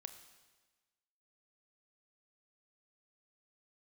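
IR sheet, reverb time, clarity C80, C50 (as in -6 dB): 1.3 s, 12.0 dB, 10.5 dB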